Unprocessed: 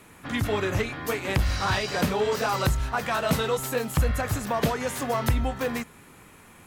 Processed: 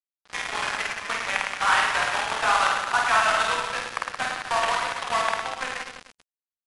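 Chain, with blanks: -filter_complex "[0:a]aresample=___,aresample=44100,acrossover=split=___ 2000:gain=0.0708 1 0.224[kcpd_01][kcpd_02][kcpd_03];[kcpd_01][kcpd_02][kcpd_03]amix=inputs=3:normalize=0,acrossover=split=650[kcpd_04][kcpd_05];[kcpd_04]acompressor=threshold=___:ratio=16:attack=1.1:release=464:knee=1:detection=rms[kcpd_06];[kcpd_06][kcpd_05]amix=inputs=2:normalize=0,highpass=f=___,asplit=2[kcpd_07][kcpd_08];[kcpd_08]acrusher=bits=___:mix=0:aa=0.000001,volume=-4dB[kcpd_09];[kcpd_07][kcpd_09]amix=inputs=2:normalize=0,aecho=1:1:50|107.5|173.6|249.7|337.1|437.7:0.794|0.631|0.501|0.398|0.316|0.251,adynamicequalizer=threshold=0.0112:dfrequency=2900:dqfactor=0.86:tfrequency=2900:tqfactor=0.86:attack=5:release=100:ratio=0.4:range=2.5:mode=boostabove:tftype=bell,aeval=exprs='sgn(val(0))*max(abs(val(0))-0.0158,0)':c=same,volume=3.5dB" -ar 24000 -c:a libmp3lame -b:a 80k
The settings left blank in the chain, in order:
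8000, 570, -50dB, 330, 4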